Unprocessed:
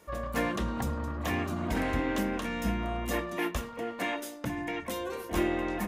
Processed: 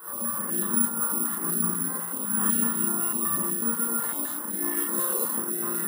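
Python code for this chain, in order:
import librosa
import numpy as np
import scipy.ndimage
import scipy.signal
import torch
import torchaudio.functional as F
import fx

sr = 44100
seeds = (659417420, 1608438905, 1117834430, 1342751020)

y = scipy.ndimage.median_filter(x, 9, mode='constant')
y = fx.dereverb_blind(y, sr, rt60_s=0.92)
y = fx.over_compress(y, sr, threshold_db=-41.0, ratio=-1.0)
y = scipy.signal.sosfilt(scipy.signal.cheby1(6, 6, 160.0, 'highpass', fs=sr, output='sos'), y)
y = fx.dmg_noise_band(y, sr, seeds[0], low_hz=280.0, high_hz=1300.0, level_db=-54.0)
y = fx.fixed_phaser(y, sr, hz=2400.0, stages=6)
y = fx.echo_alternate(y, sr, ms=129, hz=970.0, feedback_pct=71, wet_db=-9)
y = fx.rev_schroeder(y, sr, rt60_s=0.71, comb_ms=31, drr_db=-7.5)
y = (np.kron(scipy.signal.resample_poly(y, 1, 4), np.eye(4)[0]) * 4)[:len(y)]
y = fx.filter_held_notch(y, sr, hz=8.0, low_hz=270.0, high_hz=6900.0)
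y = F.gain(torch.from_numpy(y), 6.0).numpy()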